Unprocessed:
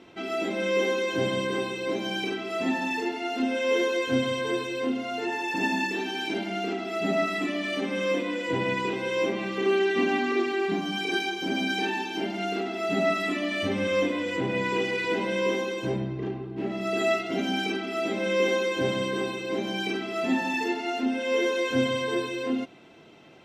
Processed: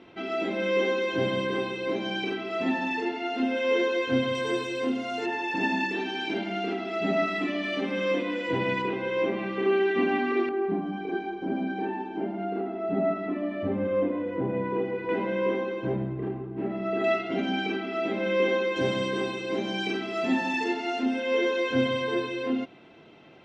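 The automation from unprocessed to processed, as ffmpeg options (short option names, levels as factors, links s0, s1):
-af "asetnsamples=n=441:p=0,asendcmd='4.35 lowpass f 9500;5.26 lowpass f 4100;8.82 lowpass f 2500;10.49 lowpass f 1000;15.09 lowpass f 1800;17.04 lowpass f 3000;18.76 lowpass f 6400;21.2 lowpass f 4000',lowpass=3900"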